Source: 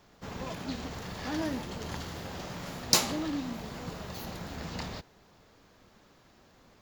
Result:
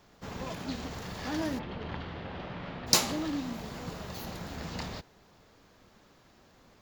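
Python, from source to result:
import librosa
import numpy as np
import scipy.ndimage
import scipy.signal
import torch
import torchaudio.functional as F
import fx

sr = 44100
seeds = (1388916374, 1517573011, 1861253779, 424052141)

y = fx.lowpass(x, sr, hz=3400.0, slope=24, at=(1.58, 2.86), fade=0.02)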